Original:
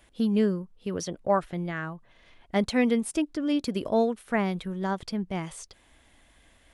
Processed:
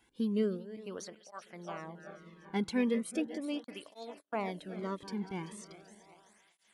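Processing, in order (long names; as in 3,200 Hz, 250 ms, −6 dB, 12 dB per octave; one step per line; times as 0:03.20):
feedback delay that plays each chunk backwards 192 ms, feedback 73%, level −14 dB
0:03.64–0:04.50: noise gate −32 dBFS, range −39 dB
through-zero flanger with one copy inverted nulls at 0.38 Hz, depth 1.7 ms
level −5.5 dB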